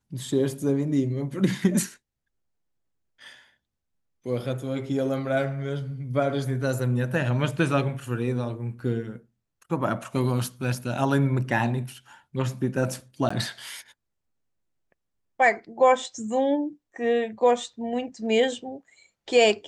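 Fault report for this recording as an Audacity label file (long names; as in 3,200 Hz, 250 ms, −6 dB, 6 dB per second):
13.290000	13.300000	drop-out 15 ms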